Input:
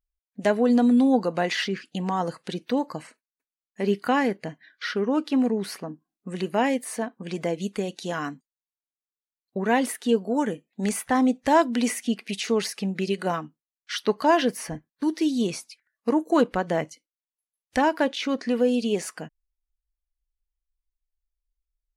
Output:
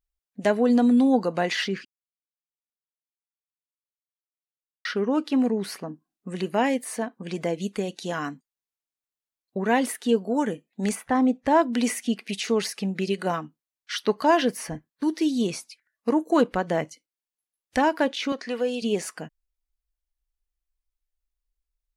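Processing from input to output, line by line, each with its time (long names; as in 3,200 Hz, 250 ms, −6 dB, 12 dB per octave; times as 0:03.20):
0:01.85–0:04.85: silence
0:10.95–0:11.73: high-shelf EQ 3,200 Hz −11.5 dB
0:18.32–0:18.82: meter weighting curve A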